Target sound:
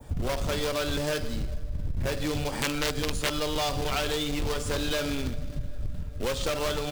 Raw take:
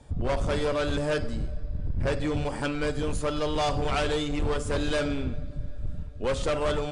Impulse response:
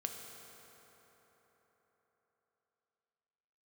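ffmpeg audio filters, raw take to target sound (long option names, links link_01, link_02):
-filter_complex "[0:a]aecho=1:1:123:0.075,acrossover=split=200[link_01][link_02];[link_02]acrusher=bits=2:mode=log:mix=0:aa=0.000001[link_03];[link_01][link_03]amix=inputs=2:normalize=0,asettb=1/sr,asplit=3[link_04][link_05][link_06];[link_04]atrim=end=2.524[link_07];[link_05]atrim=start=2.52:end=3.38,asetpts=PTS-STARTPTS,afade=type=in:duration=0.004:curve=qsin,afade=type=out:start_time=0.856:duration=0.004:curve=qsin,aeval=exprs='(mod(7.5*val(0)+1,2)-1)/7.5':channel_layout=same[link_08];[link_06]atrim=start=3.376[link_09];[link_07][link_08]acrossfade=duration=0.004:curve1=hsin:curve2=qsin[link_10];[link_10][link_09]acrossfade=duration=0.004:curve1=qsin:curve2=hsin,acompressor=threshold=-33dB:ratio=3,adynamicequalizer=threshold=0.00251:dfrequency=4200:dqfactor=0.76:tfrequency=4200:tqfactor=0.76:attack=5:release=100:ratio=0.375:range=3:mode=boostabove:tftype=bell,volume=5dB"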